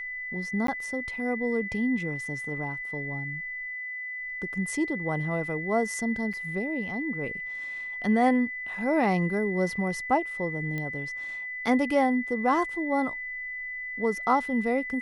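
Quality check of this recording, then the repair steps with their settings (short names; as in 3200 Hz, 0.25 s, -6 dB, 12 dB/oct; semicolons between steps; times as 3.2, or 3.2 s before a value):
tone 2000 Hz -33 dBFS
0.67–0.68 gap 13 ms
6.33–6.34 gap 5.7 ms
10.78 pop -21 dBFS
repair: de-click; notch 2000 Hz, Q 30; interpolate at 0.67, 13 ms; interpolate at 6.33, 5.7 ms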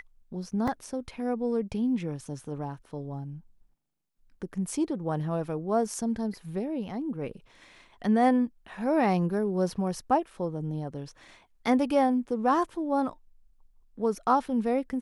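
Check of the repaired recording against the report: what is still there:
none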